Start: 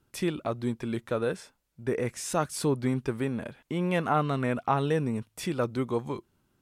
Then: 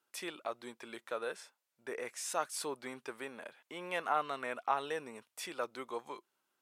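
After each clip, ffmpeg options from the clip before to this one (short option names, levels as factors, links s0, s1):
-af "highpass=640,volume=0.596"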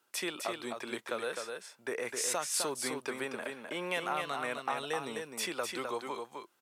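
-filter_complex "[0:a]acrossover=split=170|3000[s0][s1][s2];[s1]acompressor=threshold=0.00891:ratio=4[s3];[s0][s3][s2]amix=inputs=3:normalize=0,aecho=1:1:257:0.562,volume=2.37"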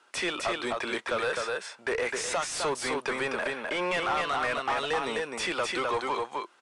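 -filter_complex "[0:a]asplit=2[s0][s1];[s1]highpass=f=720:p=1,volume=14.1,asoftclip=type=tanh:threshold=0.133[s2];[s0][s2]amix=inputs=2:normalize=0,lowpass=f=2400:p=1,volume=0.501,aresample=22050,aresample=44100,volume=0.891"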